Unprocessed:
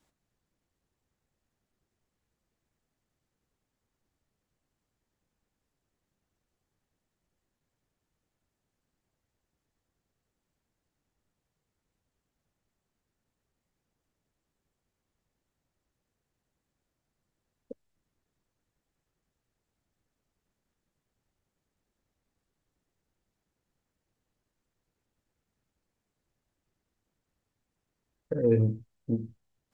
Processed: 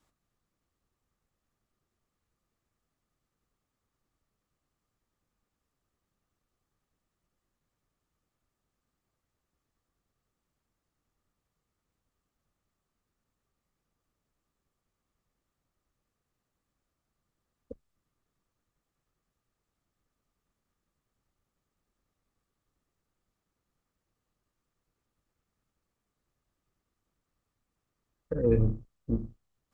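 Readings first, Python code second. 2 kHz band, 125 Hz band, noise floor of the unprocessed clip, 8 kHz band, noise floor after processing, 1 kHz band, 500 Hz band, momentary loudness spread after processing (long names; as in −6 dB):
−1.0 dB, −1.0 dB, −85 dBFS, can't be measured, −85 dBFS, +2.5 dB, −1.5 dB, 15 LU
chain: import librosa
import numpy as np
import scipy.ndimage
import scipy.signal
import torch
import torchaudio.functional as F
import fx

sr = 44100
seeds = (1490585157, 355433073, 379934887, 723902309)

y = fx.octave_divider(x, sr, octaves=2, level_db=-3.0)
y = fx.peak_eq(y, sr, hz=1200.0, db=9.0, octaves=0.23)
y = y * librosa.db_to_amplitude(-1.5)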